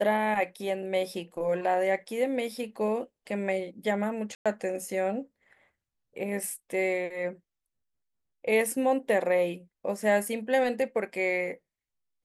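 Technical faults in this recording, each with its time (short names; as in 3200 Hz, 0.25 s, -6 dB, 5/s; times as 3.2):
4.35–4.46 gap 0.106 s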